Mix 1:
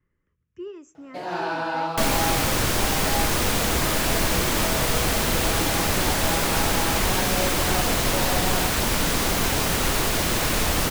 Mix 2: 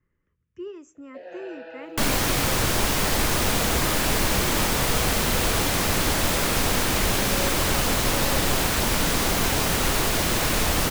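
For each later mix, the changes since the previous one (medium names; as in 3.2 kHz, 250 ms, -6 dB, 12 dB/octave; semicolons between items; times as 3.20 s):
first sound: add vowel filter e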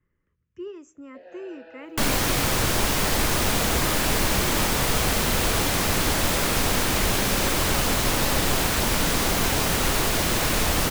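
first sound -6.0 dB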